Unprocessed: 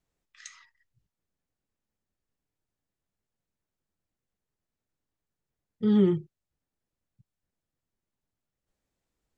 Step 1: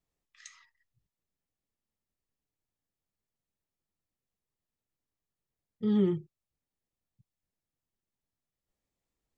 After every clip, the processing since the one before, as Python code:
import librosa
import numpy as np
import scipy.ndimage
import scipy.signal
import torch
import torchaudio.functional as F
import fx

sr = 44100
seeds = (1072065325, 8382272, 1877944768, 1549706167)

y = fx.notch(x, sr, hz=1500.0, q=12.0)
y = y * 10.0 ** (-4.5 / 20.0)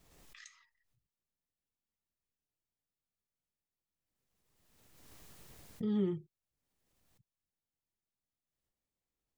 y = fx.pre_swell(x, sr, db_per_s=32.0)
y = y * 10.0 ** (-6.5 / 20.0)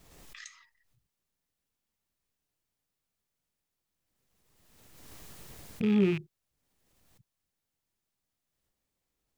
y = fx.rattle_buzz(x, sr, strikes_db=-44.0, level_db=-36.0)
y = y * 10.0 ** (7.5 / 20.0)